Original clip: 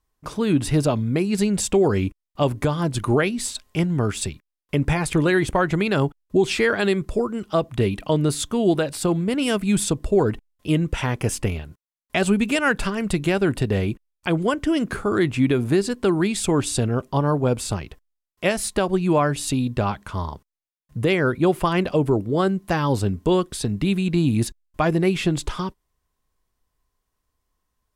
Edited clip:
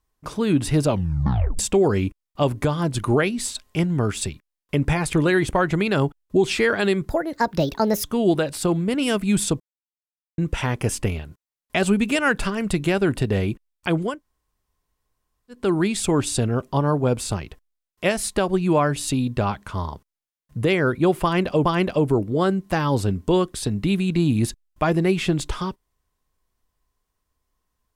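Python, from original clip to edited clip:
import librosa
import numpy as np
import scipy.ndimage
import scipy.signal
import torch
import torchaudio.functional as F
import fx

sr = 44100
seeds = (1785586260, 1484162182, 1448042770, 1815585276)

y = fx.edit(x, sr, fx.tape_stop(start_s=0.88, length_s=0.71),
    fx.speed_span(start_s=7.09, length_s=1.35, speed=1.42),
    fx.silence(start_s=10.0, length_s=0.78),
    fx.room_tone_fill(start_s=14.5, length_s=1.5, crossfade_s=0.24),
    fx.repeat(start_s=21.63, length_s=0.42, count=2), tone=tone)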